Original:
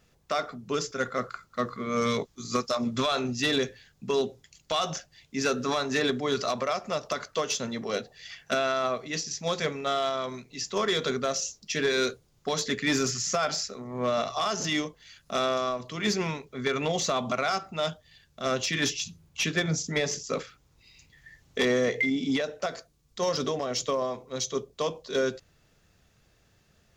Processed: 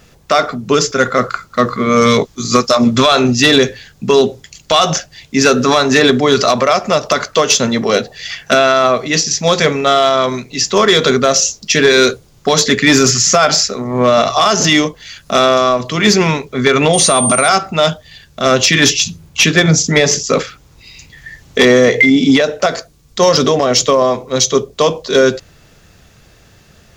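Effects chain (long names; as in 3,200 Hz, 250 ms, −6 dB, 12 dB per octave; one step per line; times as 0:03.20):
0:16.93–0:17.47: steady tone 8,800 Hz −31 dBFS
boost into a limiter +19.5 dB
level −1 dB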